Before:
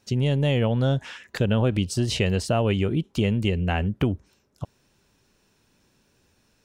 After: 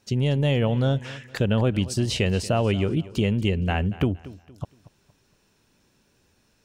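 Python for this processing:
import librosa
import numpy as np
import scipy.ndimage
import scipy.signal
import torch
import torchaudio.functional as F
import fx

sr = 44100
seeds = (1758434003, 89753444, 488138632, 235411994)

y = fx.echo_feedback(x, sr, ms=233, feedback_pct=35, wet_db=-18.0)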